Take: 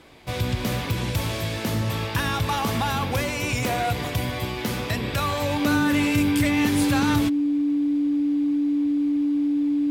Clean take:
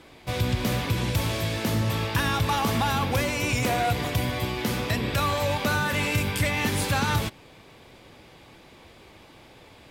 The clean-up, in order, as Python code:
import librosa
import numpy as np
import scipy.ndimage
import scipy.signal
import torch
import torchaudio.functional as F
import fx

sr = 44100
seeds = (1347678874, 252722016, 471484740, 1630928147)

y = fx.fix_declick_ar(x, sr, threshold=10.0)
y = fx.notch(y, sr, hz=290.0, q=30.0)